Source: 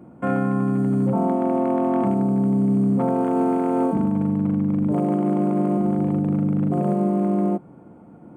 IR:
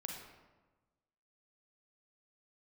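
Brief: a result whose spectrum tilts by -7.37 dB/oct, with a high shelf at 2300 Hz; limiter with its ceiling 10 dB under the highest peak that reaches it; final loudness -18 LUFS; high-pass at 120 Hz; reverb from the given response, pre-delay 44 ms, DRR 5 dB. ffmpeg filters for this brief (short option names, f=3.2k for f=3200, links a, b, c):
-filter_complex "[0:a]highpass=120,highshelf=f=2.3k:g=-7,alimiter=limit=-21dB:level=0:latency=1,asplit=2[a][b];[1:a]atrim=start_sample=2205,adelay=44[c];[b][c]afir=irnorm=-1:irlink=0,volume=-3.5dB[d];[a][d]amix=inputs=2:normalize=0,volume=11dB"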